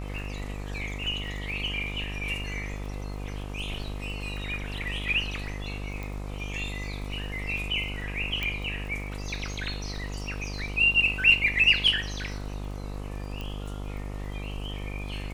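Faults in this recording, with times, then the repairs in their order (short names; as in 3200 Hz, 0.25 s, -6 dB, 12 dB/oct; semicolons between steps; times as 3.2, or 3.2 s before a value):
buzz 50 Hz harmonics 26 -35 dBFS
crackle 42/s -39 dBFS
6.03 pop
8.43 pop -16 dBFS
13.41 pop -23 dBFS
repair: de-click; de-hum 50 Hz, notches 26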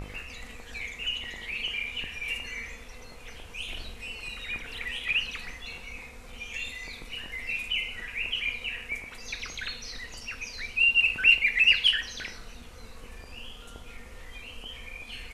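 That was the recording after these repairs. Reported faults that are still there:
6.03 pop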